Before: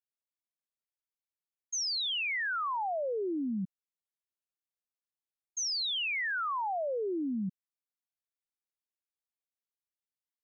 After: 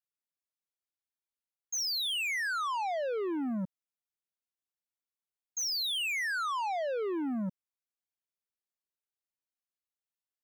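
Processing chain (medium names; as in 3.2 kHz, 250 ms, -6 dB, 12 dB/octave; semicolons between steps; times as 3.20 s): waveshaping leveller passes 2; trim -1 dB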